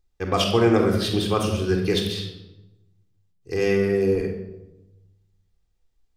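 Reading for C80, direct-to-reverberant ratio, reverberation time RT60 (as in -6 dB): 8.0 dB, 1.5 dB, 0.95 s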